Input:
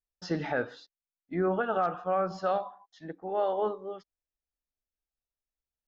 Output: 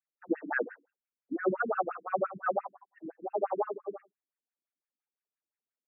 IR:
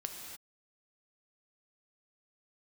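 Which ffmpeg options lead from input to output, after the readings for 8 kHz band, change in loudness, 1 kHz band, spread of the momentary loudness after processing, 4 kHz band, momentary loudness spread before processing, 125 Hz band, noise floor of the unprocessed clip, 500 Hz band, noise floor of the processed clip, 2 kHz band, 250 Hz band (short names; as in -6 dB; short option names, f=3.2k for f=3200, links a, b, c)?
n/a, -2.5 dB, -2.5 dB, 14 LU, under -30 dB, 15 LU, -11.5 dB, under -85 dBFS, -3.0 dB, under -85 dBFS, +2.0 dB, -2.5 dB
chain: -filter_complex "[0:a]asplit=2[a][b];[b]adelay=100,highpass=300,lowpass=3.4k,asoftclip=type=hard:threshold=-27dB,volume=-21dB[c];[a][c]amix=inputs=2:normalize=0,afftfilt=real='re*between(b*sr/1024,240*pow(2000/240,0.5+0.5*sin(2*PI*5.8*pts/sr))/1.41,240*pow(2000/240,0.5+0.5*sin(2*PI*5.8*pts/sr))*1.41)':imag='im*between(b*sr/1024,240*pow(2000/240,0.5+0.5*sin(2*PI*5.8*pts/sr))/1.41,240*pow(2000/240,0.5+0.5*sin(2*PI*5.8*pts/sr))*1.41)':win_size=1024:overlap=0.75,volume=5dB"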